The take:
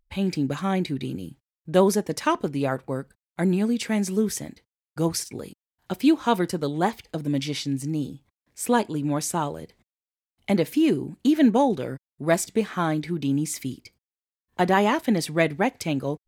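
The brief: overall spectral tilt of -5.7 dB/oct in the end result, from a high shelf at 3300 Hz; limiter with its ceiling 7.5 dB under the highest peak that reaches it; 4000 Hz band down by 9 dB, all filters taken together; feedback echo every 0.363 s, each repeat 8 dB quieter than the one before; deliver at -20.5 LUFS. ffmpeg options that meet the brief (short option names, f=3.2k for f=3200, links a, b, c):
-af "highshelf=f=3.3k:g=-6.5,equalizer=f=4k:t=o:g=-7.5,alimiter=limit=-14dB:level=0:latency=1,aecho=1:1:363|726|1089|1452|1815:0.398|0.159|0.0637|0.0255|0.0102,volume=6dB"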